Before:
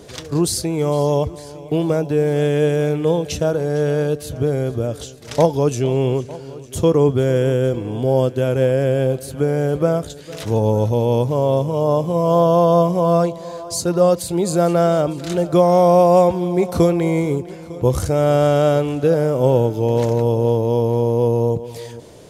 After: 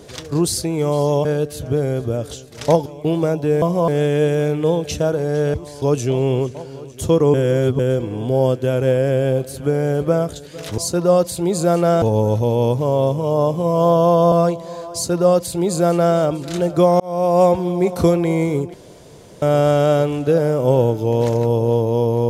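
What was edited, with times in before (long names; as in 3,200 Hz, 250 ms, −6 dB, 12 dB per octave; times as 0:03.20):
0:01.25–0:01.53: swap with 0:03.95–0:05.56
0:07.08–0:07.53: reverse
0:12.82–0:13.08: move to 0:02.29
0:13.70–0:14.94: duplicate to 0:10.52
0:15.76–0:16.21: fade in
0:17.50–0:18.18: fill with room tone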